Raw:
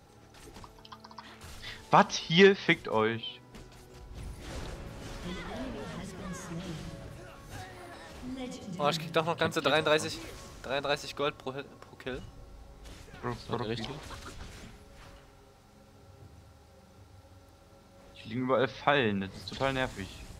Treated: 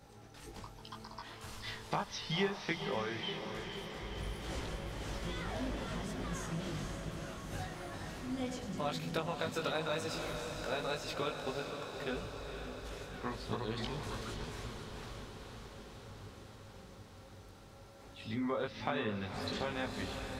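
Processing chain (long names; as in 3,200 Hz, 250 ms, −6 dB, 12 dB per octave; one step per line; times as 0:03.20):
downward compressor 5 to 1, threshold −33 dBFS, peak gain reduction 17 dB
chorus effect 1.1 Hz, delay 18.5 ms, depth 2 ms
feedback delay with all-pass diffusion 510 ms, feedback 71%, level −7 dB
level +2.5 dB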